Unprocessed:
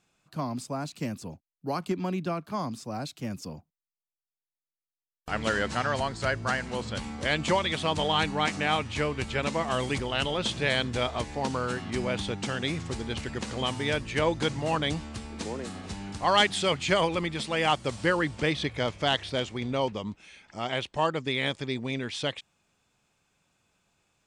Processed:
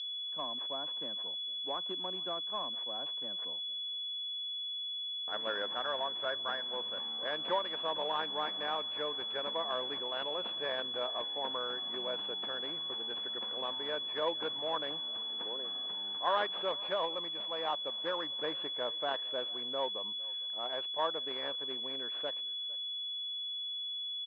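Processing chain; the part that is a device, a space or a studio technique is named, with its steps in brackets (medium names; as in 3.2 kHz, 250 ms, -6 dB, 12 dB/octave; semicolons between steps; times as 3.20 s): toy sound module (decimation joined by straight lines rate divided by 6×; class-D stage that switches slowly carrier 3.4 kHz; cabinet simulation 710–4800 Hz, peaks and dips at 790 Hz -7 dB, 1.3 kHz -6 dB, 2.1 kHz -9 dB, 3.9 kHz -3 dB); 16.71–18.30 s: fifteen-band graphic EQ 100 Hz -7 dB, 400 Hz -4 dB, 1.6 kHz -5 dB; delay 455 ms -23 dB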